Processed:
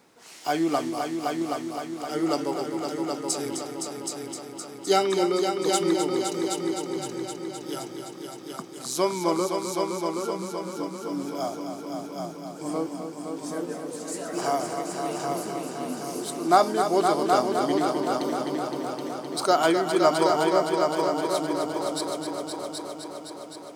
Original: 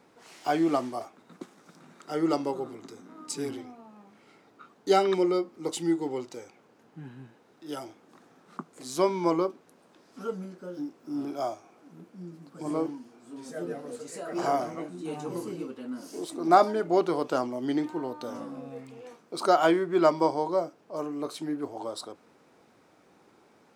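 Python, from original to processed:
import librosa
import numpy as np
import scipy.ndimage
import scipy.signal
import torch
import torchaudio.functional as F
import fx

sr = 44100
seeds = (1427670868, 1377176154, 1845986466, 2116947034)

p1 = fx.high_shelf(x, sr, hz=3400.0, db=9.5)
y = p1 + fx.echo_heads(p1, sr, ms=258, heads='all three', feedback_pct=62, wet_db=-8.0, dry=0)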